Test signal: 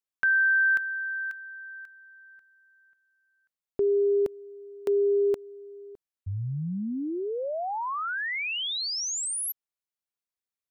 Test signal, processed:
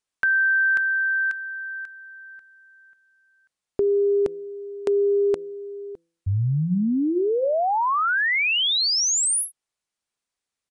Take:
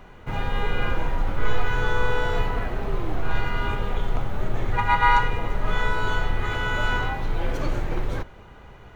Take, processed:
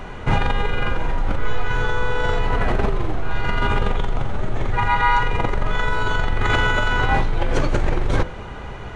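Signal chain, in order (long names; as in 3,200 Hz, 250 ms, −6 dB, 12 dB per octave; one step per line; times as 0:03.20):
hum removal 167.3 Hz, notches 3
in parallel at +3 dB: compressor whose output falls as the input rises −27 dBFS, ratio −0.5
on the sum: downsampling to 22,050 Hz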